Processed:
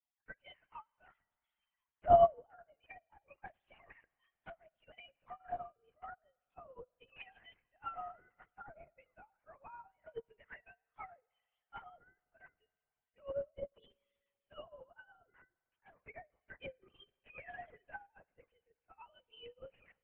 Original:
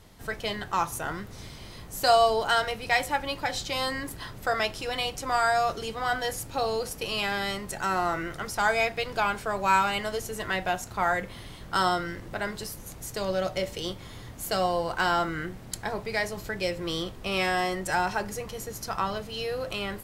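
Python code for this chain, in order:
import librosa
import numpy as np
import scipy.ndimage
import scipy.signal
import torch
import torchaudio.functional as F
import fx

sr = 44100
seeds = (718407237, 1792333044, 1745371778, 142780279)

y = fx.sine_speech(x, sr)
y = scipy.signal.sosfilt(scipy.signal.butter(2, 390.0, 'highpass', fs=sr, output='sos'), y)
y = fx.env_lowpass_down(y, sr, base_hz=580.0, full_db=-24.5)
y = fx.tilt_eq(y, sr, slope=2.0)
y = fx.quant_float(y, sr, bits=6)
y = fx.chorus_voices(y, sr, voices=2, hz=0.15, base_ms=12, depth_ms=1.1, mix_pct=45)
y = fx.lpc_vocoder(y, sr, seeds[0], excitation='whisper', order=8)
y = fx.rev_spring(y, sr, rt60_s=2.7, pass_ms=(48,), chirp_ms=35, drr_db=18.0)
y = fx.upward_expand(y, sr, threshold_db=-44.0, expansion=2.5)
y = y * 10.0 ** (2.0 / 20.0)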